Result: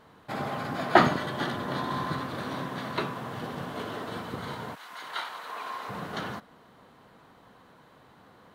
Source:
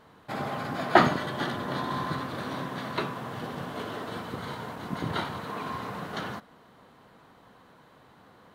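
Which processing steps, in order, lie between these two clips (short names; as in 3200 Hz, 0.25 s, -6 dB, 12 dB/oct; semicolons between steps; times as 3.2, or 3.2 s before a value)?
4.74–5.88 HPF 1400 Hz -> 540 Hz 12 dB/oct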